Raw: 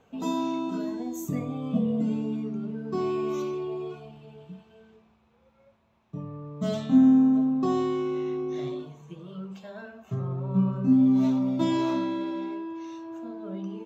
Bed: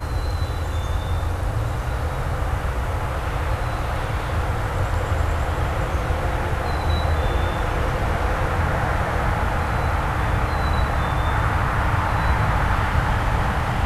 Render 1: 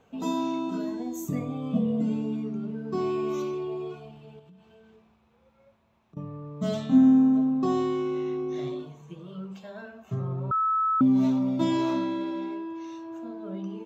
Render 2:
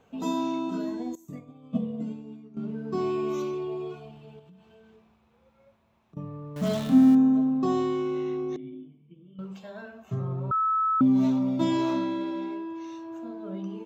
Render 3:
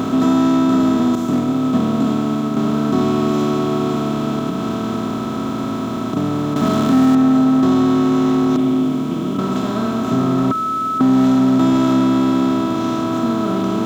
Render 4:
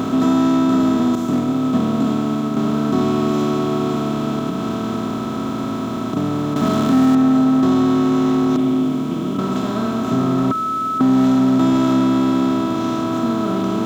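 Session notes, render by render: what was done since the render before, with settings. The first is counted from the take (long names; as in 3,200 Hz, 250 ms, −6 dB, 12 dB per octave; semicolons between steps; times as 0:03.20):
0:04.39–0:06.17: downward compressor, threshold −50 dBFS; 0:10.51–0:11.01: beep over 1,300 Hz −21.5 dBFS
0:01.15–0:02.57: expander for the loud parts 2.5 to 1, over −34 dBFS; 0:06.56–0:07.15: converter with a step at zero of −33.5 dBFS; 0:08.56–0:09.39: formant resonators in series i
compressor on every frequency bin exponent 0.2; leveller curve on the samples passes 1
level −1 dB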